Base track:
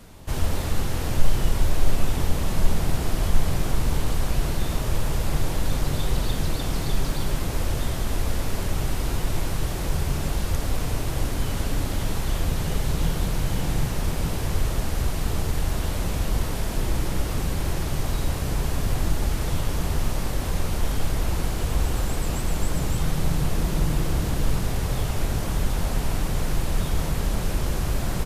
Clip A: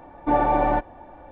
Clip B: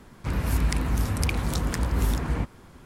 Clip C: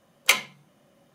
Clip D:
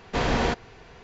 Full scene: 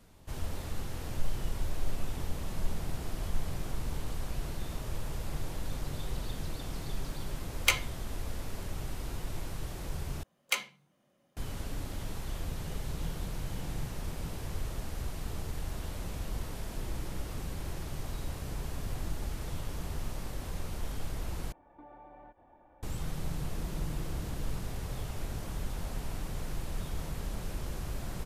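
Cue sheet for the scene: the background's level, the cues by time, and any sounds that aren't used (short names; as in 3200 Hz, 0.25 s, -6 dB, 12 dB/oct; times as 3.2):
base track -12.5 dB
7.39 add C -6.5 dB
10.23 replace with C -11 dB
21.52 replace with A -16 dB + compressor 10:1, threshold -33 dBFS
not used: B, D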